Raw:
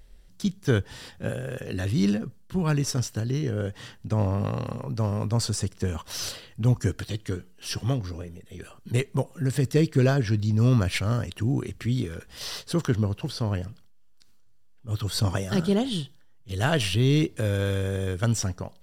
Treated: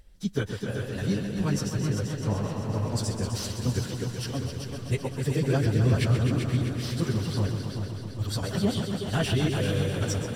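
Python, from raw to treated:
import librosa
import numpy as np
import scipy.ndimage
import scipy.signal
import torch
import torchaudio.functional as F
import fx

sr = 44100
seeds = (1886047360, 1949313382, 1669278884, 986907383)

y = fx.echo_heads(x, sr, ms=235, heads='all three', feedback_pct=62, wet_db=-9.5)
y = fx.stretch_vocoder_free(y, sr, factor=0.55)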